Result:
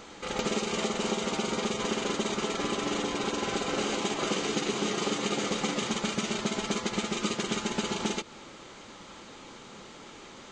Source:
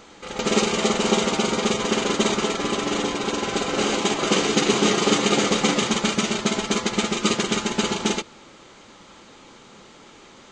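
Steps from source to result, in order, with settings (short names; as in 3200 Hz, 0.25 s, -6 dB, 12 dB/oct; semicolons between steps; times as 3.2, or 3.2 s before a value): compressor, threshold -27 dBFS, peak gain reduction 12.5 dB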